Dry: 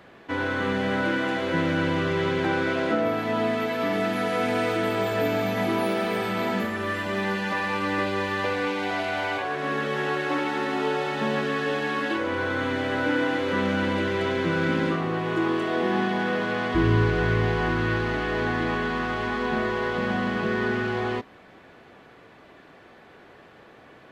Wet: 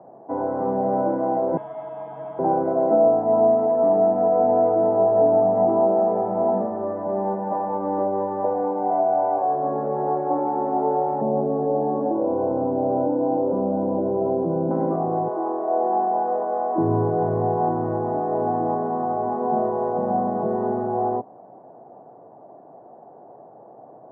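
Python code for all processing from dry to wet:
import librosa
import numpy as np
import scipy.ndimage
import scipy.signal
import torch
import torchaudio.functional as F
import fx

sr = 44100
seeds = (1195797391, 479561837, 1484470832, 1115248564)

y = fx.chain(x, sr, fx.low_shelf(hz=71.0, db=9.5),
    fx.freq_invert(carrier_hz=3600), at=(1.57, 2.39))
y = fx.chain(y, sr, fx.bessel_lowpass(hz=570.0, order=2),
    fx.env_flatten(amount_pct=70), at=(11.21, 14.71))
y = fx.chain(y, sr, fx.highpass(hz=440.0, slope=12),
    fx.peak_eq(hz=2700.0, db=-6.5, octaves=0.24), at=(15.28, 16.78))
y = scipy.signal.sosfilt(scipy.signal.ellip(3, 1.0, 60, [120.0, 890.0], 'bandpass', fs=sr, output='sos'), y)
y = fx.peak_eq(y, sr, hz=690.0, db=12.5, octaves=0.83)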